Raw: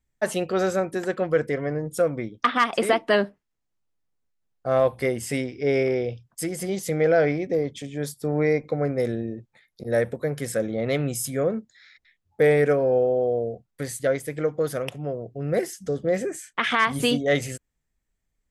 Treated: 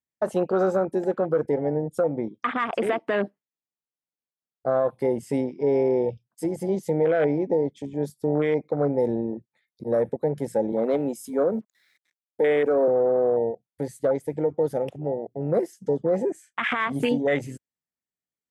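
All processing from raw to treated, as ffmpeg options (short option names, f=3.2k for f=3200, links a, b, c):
-filter_complex "[0:a]asettb=1/sr,asplit=3[a][b][c];[a]atrim=end=10.724[d];[b]atrim=start=10.72:end=12.88,asetpts=PTS-STARTPTS,afade=t=in:d=0.004:c=qsin,afade=t=out:st=2.156:d=0.004:c=qsin,highpass=f=190:w=0.5412,highpass=f=190:w=1.3066,acrusher=bits=8:mix=0:aa=0.5[e];[c]atrim=start=12.876[f];[d][e]acrossfade=d=0.004:c1=hsin:c2=qsin[g];[g][f]acrossfade=d=0.004:c1=qsin:c2=hsin,highpass=170,afwtdn=0.0398,alimiter=limit=-17.5dB:level=0:latency=1:release=63,volume=3.5dB"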